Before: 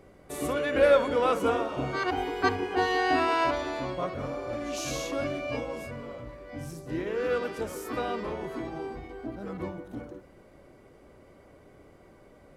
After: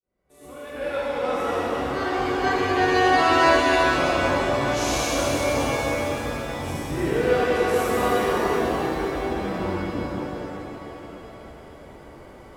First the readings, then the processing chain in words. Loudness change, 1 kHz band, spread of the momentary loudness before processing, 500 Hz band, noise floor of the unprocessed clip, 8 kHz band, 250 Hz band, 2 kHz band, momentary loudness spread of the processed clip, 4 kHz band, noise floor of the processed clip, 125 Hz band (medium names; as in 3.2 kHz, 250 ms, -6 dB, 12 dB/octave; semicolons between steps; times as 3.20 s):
+6.5 dB, +8.0 dB, 16 LU, +5.5 dB, -55 dBFS, +9.5 dB, +7.5 dB, +8.5 dB, 17 LU, +9.0 dB, -45 dBFS, +8.5 dB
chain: fade-in on the opening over 3.82 s; pitch-shifted reverb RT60 3.7 s, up +7 st, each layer -8 dB, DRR -7.5 dB; trim +1.5 dB